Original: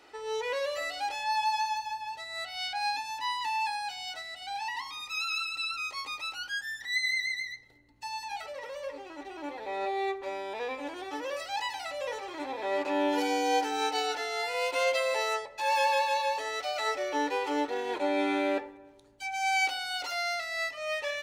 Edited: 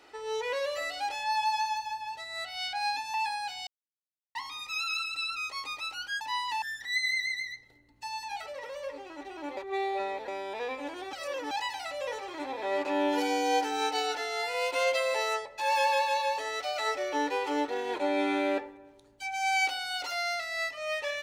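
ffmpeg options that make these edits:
-filter_complex "[0:a]asplit=10[a][b][c][d][e][f][g][h][i][j];[a]atrim=end=3.142[k];[b]atrim=start=3.548:end=4.08,asetpts=PTS-STARTPTS,afade=t=out:st=0.528:d=0.004:c=hsin[l];[c]atrim=start=4.08:end=4.76,asetpts=PTS-STARTPTS,volume=0[m];[d]atrim=start=4.76:end=6.622,asetpts=PTS-STARTPTS,afade=t=in:d=0.004:c=hsin[n];[e]atrim=start=3.138:end=3.552[o];[f]atrim=start=6.618:end=9.572[p];[g]atrim=start=9.568:end=10.282,asetpts=PTS-STARTPTS,areverse[q];[h]atrim=start=10.278:end=11.132[r];[i]atrim=start=11.128:end=11.512,asetpts=PTS-STARTPTS,areverse[s];[j]atrim=start=11.508[t];[l][m][n]concat=n=3:v=0:a=1[u];[k][u]acrossfade=d=0.004:c1=hsin:c2=hsin[v];[v][o]acrossfade=d=0.004:c1=hsin:c2=hsin[w];[w][p]acrossfade=d=0.004:c1=hsin:c2=hsin[x];[x][q]acrossfade=d=0.004:c1=hsin:c2=hsin[y];[y][r]acrossfade=d=0.004:c1=hsin:c2=hsin[z];[z][s]acrossfade=d=0.004:c1=hsin:c2=hsin[aa];[aa][t]acrossfade=d=0.004:c1=hsin:c2=hsin"

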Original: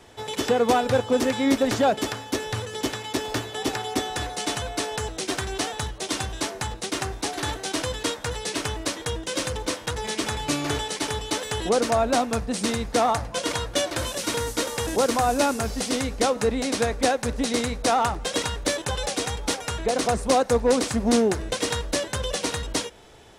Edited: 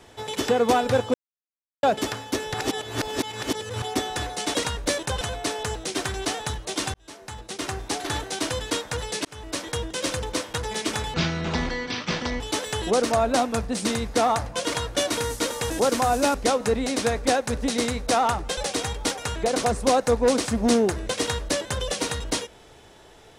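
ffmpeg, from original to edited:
-filter_complex "[0:a]asplit=14[a][b][c][d][e][f][g][h][i][j][k][l][m][n];[a]atrim=end=1.14,asetpts=PTS-STARTPTS,afade=t=out:st=1.136:d=0.004:c=hsin[o];[b]atrim=start=1.14:end=1.83,asetpts=PTS-STARTPTS,volume=0[p];[c]atrim=start=1.83:end=2.542,asetpts=PTS-STARTPTS,afade=t=in:d=0.004:c=hsin[q];[d]atrim=start=2.538:end=3.822,asetpts=PTS-STARTPTS,areverse[r];[e]atrim=start=3.818:end=4.542[s];[f]atrim=start=18.328:end=19.002[t];[g]atrim=start=4.538:end=6.27,asetpts=PTS-STARTPTS,afade=t=out:st=1.728:d=0.004:c=hsin[u];[h]atrim=start=6.27:end=8.58,asetpts=PTS-STARTPTS,afade=t=in:d=0.94,afade=t=out:st=2.306:d=0.004:c=hsin[v];[i]atrim=start=8.58:end=10.474,asetpts=PTS-STARTPTS,afade=t=in:d=0.4[w];[j]atrim=start=10.47:end=11.19,asetpts=PTS-STARTPTS,asetrate=25137,aresample=44100,atrim=end_sample=55705,asetpts=PTS-STARTPTS[x];[k]atrim=start=11.186:end=13.892[y];[l]atrim=start=14.268:end=15.512[z];[m]atrim=start=16.098:end=18.332[aa];[n]atrim=start=18.998[ab];[o][p][q]concat=n=3:v=0:a=1[ac];[ac][r]acrossfade=d=0.004:c1=hsin:c2=hsin[ad];[ad][s]acrossfade=d=0.004:c1=hsin:c2=hsin[ae];[ae][t]acrossfade=d=0.004:c1=hsin:c2=hsin[af];[u][v][w]concat=n=3:v=0:a=1[ag];[af][ag]acrossfade=d=0.004:c1=hsin:c2=hsin[ah];[ah][x]acrossfade=d=0.004:c1=hsin:c2=hsin[ai];[ai][y]acrossfade=d=0.004:c1=hsin:c2=hsin[aj];[aj][z]acrossfade=d=0.004:c1=hsin:c2=hsin[ak];[ak][aa]acrossfade=d=0.004:c1=hsin:c2=hsin[al];[al][ab]acrossfade=d=0.004:c1=hsin:c2=hsin"

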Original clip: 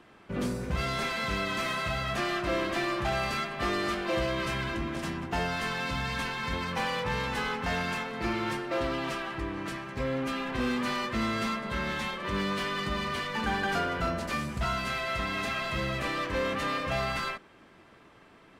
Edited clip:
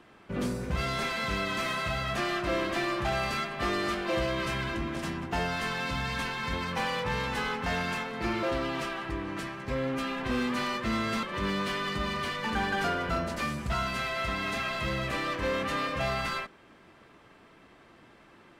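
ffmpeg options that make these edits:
-filter_complex "[0:a]asplit=3[a][b][c];[a]atrim=end=8.432[d];[b]atrim=start=8.718:end=11.522[e];[c]atrim=start=12.138[f];[d][e]acrossfade=d=0.004:c1=hsin:c2=hsin[g];[g][f]acrossfade=d=0.004:c1=hsin:c2=hsin"

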